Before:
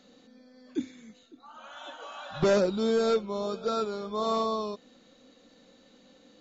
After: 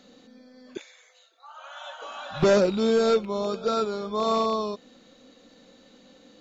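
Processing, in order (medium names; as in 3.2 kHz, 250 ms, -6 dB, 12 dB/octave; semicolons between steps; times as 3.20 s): rattle on loud lows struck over -38 dBFS, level -38 dBFS; 0.77–2.02 s: elliptic high-pass 560 Hz, stop band 60 dB; trim +4 dB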